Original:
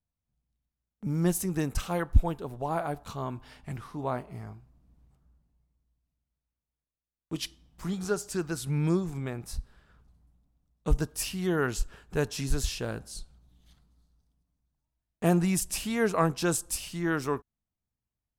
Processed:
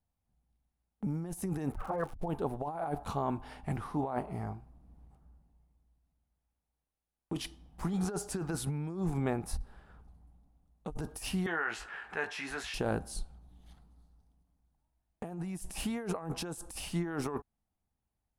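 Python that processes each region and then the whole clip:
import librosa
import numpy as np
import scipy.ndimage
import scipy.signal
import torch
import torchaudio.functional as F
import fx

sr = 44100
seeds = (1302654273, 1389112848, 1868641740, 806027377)

y = fx.lowpass(x, sr, hz=1800.0, slope=24, at=(1.71, 2.28), fade=0.02)
y = fx.env_flanger(y, sr, rest_ms=11.7, full_db=-19.0, at=(1.71, 2.28), fade=0.02)
y = fx.dmg_crackle(y, sr, seeds[0], per_s=200.0, level_db=-41.0, at=(1.71, 2.28), fade=0.02)
y = fx.chain(y, sr, fx.bandpass_q(hz=1900.0, q=2.2),
    fx.doubler(ms=18.0, db=-7.0),
    fx.env_flatten(amount_pct=50), at=(11.46, 12.74))
y = fx.graphic_eq_31(y, sr, hz=(125, 800, 10000), db=(-6, 8, 9))
y = fx.over_compress(y, sr, threshold_db=-34.0, ratio=-1.0)
y = fx.high_shelf(y, sr, hz=2500.0, db=-11.0)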